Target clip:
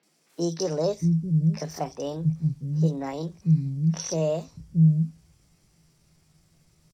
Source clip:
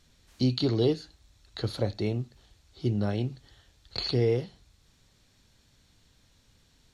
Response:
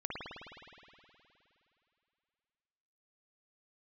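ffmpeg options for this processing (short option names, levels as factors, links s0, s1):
-filter_complex "[0:a]asetrate=58866,aresample=44100,atempo=0.749154,equalizer=f=160:t=o:w=0.21:g=14.5,acrossover=split=230|3500[s0][s1][s2];[s2]adelay=30[s3];[s0]adelay=630[s4];[s4][s1][s3]amix=inputs=3:normalize=0"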